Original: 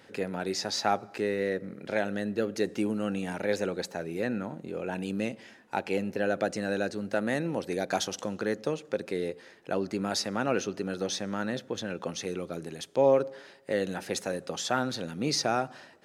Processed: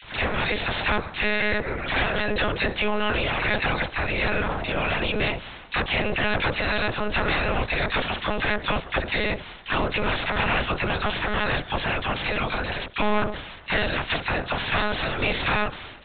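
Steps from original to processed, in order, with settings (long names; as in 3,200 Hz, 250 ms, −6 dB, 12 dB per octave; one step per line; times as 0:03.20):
ceiling on every frequency bin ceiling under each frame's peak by 26 dB
in parallel at +3 dB: downward compressor, threshold −37 dBFS, peak gain reduction 18 dB
on the sum: all-pass dispersion lows, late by 41 ms, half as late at 1,300 Hz
soft clipping −26.5 dBFS, distortion −9 dB
one-pitch LPC vocoder at 8 kHz 210 Hz
level +8 dB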